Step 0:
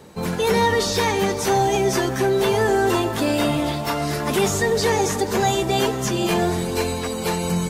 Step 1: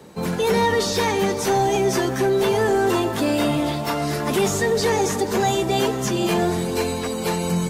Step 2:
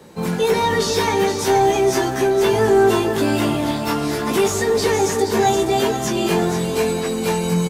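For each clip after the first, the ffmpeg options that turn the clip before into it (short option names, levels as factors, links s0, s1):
-filter_complex "[0:a]lowshelf=f=440:g=3,acrossover=split=130[s0][s1];[s1]acontrast=77[s2];[s0][s2]amix=inputs=2:normalize=0,volume=0.422"
-filter_complex "[0:a]asplit=2[s0][s1];[s1]adelay=18,volume=0.631[s2];[s0][s2]amix=inputs=2:normalize=0,asplit=2[s3][s4];[s4]aecho=0:1:473:0.376[s5];[s3][s5]amix=inputs=2:normalize=0"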